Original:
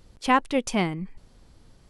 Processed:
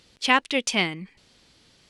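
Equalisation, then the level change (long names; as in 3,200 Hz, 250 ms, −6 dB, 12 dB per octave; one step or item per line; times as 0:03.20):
meter weighting curve D
−1.5 dB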